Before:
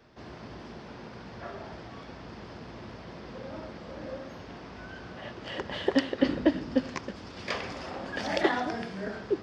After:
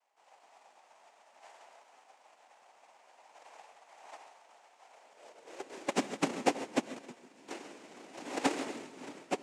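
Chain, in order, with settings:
samples sorted by size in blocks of 64 samples
cochlear-implant simulation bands 4
high-pass filter sweep 760 Hz → 270 Hz, 0:04.86–0:05.92
on a send: feedback echo with a high-pass in the loop 134 ms, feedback 67%, high-pass 340 Hz, level −13 dB
on the sum: reverb whose tail is shaped and stops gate 180 ms rising, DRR 8.5 dB
expander for the loud parts 1.5 to 1, over −45 dBFS
level −6.5 dB

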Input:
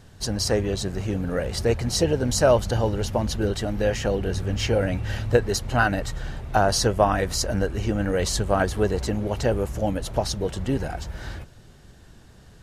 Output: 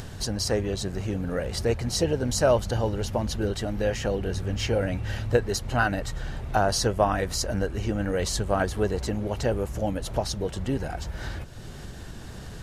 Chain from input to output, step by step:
upward compression, threshold −23 dBFS
level −3 dB

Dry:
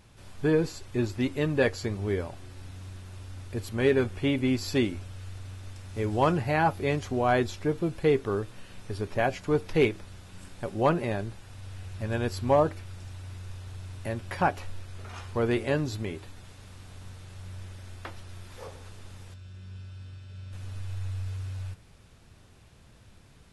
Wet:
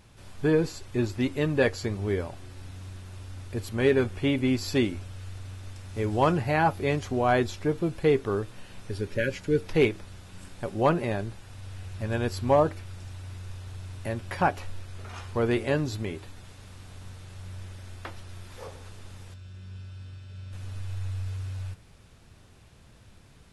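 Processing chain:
healed spectral selection 0:08.62–0:09.59, 600–1,400 Hz
level +1 dB

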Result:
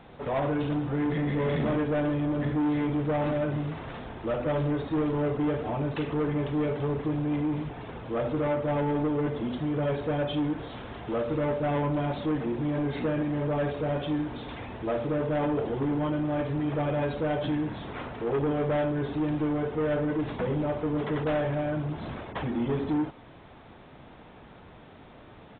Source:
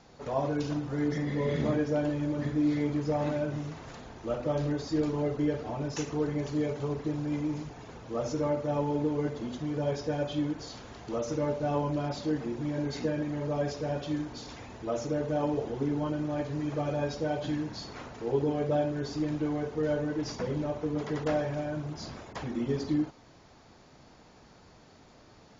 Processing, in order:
soft clipping −29.5 dBFS, distortion −11 dB
downsampling to 8,000 Hz
level +6.5 dB

